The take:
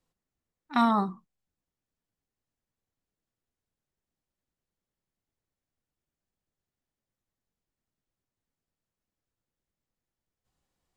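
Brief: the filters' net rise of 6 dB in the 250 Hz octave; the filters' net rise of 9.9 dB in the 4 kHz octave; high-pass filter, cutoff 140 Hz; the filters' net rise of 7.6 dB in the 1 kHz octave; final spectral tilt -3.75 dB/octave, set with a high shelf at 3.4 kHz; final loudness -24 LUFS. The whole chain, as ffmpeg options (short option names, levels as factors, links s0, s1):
-af "highpass=140,equalizer=f=250:t=o:g=7,equalizer=f=1000:t=o:g=8,highshelf=f=3400:g=3.5,equalizer=f=4000:t=o:g=8,volume=0.596"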